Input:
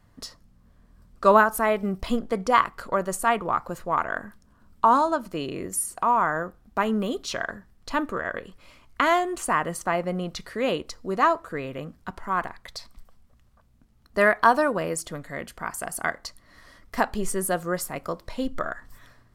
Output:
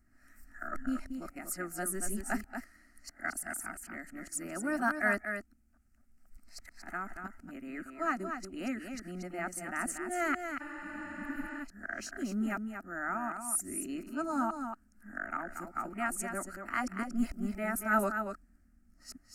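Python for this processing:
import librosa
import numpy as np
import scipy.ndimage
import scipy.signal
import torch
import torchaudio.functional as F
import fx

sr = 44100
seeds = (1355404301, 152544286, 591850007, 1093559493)

y = np.flip(x).copy()
y = fx.graphic_eq(y, sr, hz=(250, 500, 1000, 8000), db=(5, -7, -6, 4))
y = y + 10.0 ** (-7.0 / 20.0) * np.pad(y, (int(233 * sr / 1000.0), 0))[:len(y)]
y = fx.spec_repair(y, sr, seeds[0], start_s=10.63, length_s=0.95, low_hz=300.0, high_hz=9500.0, source='after')
y = fx.peak_eq(y, sr, hz=1300.0, db=9.0, octaves=0.24)
y = fx.fixed_phaser(y, sr, hz=710.0, stages=8)
y = y * 10.0 ** (-7.0 / 20.0)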